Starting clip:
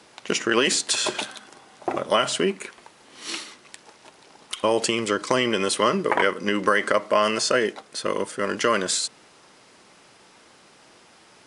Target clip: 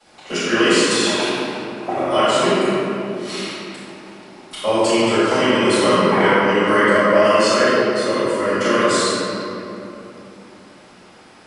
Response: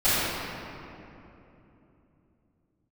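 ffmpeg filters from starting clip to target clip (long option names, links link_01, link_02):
-filter_complex "[1:a]atrim=start_sample=2205[link_01];[0:a][link_01]afir=irnorm=-1:irlink=0,volume=-11.5dB"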